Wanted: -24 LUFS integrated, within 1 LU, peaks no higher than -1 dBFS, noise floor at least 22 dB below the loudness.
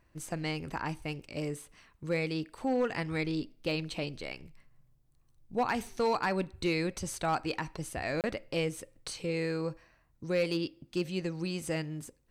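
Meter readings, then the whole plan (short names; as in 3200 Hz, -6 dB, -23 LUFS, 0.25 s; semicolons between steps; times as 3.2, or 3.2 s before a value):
clipped 0.4%; flat tops at -22.0 dBFS; dropouts 1; longest dropout 28 ms; loudness -34.0 LUFS; peak -22.0 dBFS; loudness target -24.0 LUFS
-> clip repair -22 dBFS; interpolate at 8.21, 28 ms; gain +10 dB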